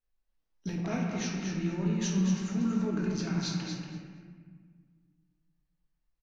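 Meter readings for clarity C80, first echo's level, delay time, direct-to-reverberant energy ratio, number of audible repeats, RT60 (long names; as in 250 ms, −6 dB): 1.5 dB, −7.0 dB, 235 ms, −2.5 dB, 1, 1.8 s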